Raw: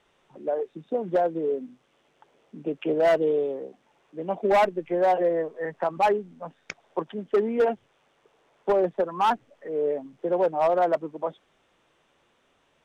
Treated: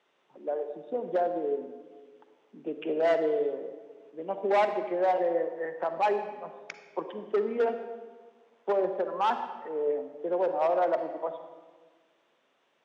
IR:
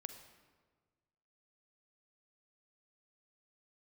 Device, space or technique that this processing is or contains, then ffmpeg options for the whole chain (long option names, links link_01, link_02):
supermarket ceiling speaker: -filter_complex "[0:a]highpass=260,lowpass=6200[link_01];[1:a]atrim=start_sample=2205[link_02];[link_01][link_02]afir=irnorm=-1:irlink=0"